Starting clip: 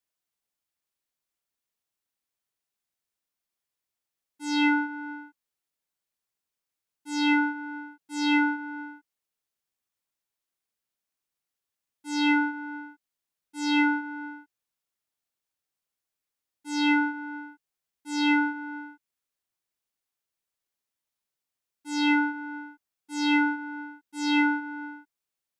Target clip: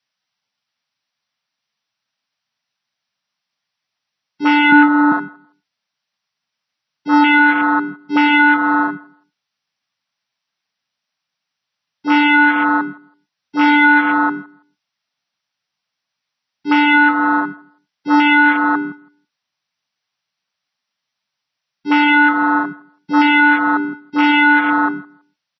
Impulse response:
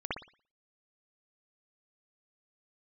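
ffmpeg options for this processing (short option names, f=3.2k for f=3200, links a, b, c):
-filter_complex "[0:a]asettb=1/sr,asplit=3[a][b][c];[a]atrim=end=4.724[d];[b]atrim=start=4.72:end=5.12,asetpts=PTS-STARTPTS,afade=t=in:d=0.004:c=qsin,afade=t=out:st=0.396:d=0.004:c=qsin,aemphasis=mode=reproduction:type=riaa[e];[c]atrim=start=5.116[f];[d][e]acrossfade=d=0.004:c1=hsin:c2=qsin[g];[g][f]acrossfade=d=0.004:c1=qsin:c2=hsin,asettb=1/sr,asplit=3[h][i][j];[h]atrim=end=13.634[k];[i]atrim=start=13.63:end=14.08,asetpts=PTS-STARTPTS,afade=t=in:d=0.004:c=qsin,afade=t=out:st=0.446:d=0.004:c=qsin,bandreject=f=2.6k:w=8.2[l];[j]atrim=start=14.076[m];[k][l]acrossfade=d=0.004:c1=hsin:c2=qsin[n];[n][m]acrossfade=d=0.004:c1=qsin:c2=hsin,asplit=3[o][p][q];[o]afade=t=out:st=17.02:d=0.02[r];[p]lowpass=f=7.6k:w=0.5412,lowpass=f=7.6k:w=1.3066,afade=t=in:st=17.02:d=0.02,afade=t=out:st=17.43:d=0.02[s];[q]afade=t=in:st=17.43:d=0.02[t];[r][s][t]amix=inputs=3:normalize=0,acrossover=split=3200[u][v];[v]acompressor=threshold=-46dB:ratio=4:attack=1:release=60[w];[u][w]amix=inputs=2:normalize=0,highpass=f=130:w=0.5412,highpass=f=130:w=1.3066,afwtdn=0.02,equalizer=f=380:t=o:w=1.2:g=-14,acompressor=threshold=-37dB:ratio=2,asplit=2[x][y];[y]adelay=164,lowpass=f=3.6k:p=1,volume=-23dB,asplit=2[z][aa];[aa]adelay=164,lowpass=f=3.6k:p=1,volume=0.19[ab];[x][z][ab]amix=inputs=3:normalize=0,alimiter=level_in=31.5dB:limit=-1dB:release=50:level=0:latency=1,volume=-1dB" -ar 24000 -c:a libmp3lame -b:a 24k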